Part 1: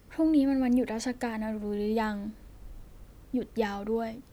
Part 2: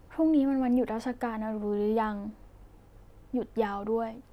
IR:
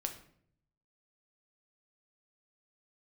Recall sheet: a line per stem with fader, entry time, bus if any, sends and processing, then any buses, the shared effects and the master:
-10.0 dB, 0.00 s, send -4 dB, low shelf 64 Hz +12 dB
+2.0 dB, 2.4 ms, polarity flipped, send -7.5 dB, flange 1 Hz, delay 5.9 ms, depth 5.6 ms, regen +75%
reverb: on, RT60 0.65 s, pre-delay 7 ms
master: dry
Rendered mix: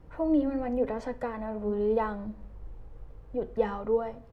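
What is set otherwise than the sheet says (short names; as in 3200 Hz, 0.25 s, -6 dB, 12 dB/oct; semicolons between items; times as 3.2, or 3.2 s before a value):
stem 2: polarity flipped; master: extra LPF 1400 Hz 6 dB/oct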